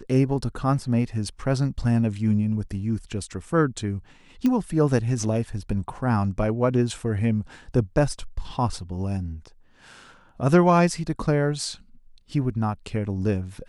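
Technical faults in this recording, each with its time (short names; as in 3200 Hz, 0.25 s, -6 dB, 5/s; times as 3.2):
4.46 pop -13 dBFS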